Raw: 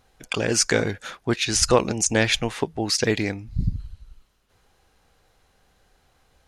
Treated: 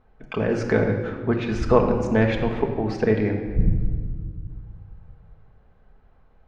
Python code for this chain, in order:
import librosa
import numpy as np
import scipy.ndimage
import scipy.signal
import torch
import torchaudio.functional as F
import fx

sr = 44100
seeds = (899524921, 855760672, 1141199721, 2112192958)

y = scipy.signal.sosfilt(scipy.signal.butter(2, 1400.0, 'lowpass', fs=sr, output='sos'), x)
y = fx.low_shelf(y, sr, hz=79.0, db=5.5)
y = fx.room_shoebox(y, sr, seeds[0], volume_m3=2000.0, walls='mixed', distance_m=1.5)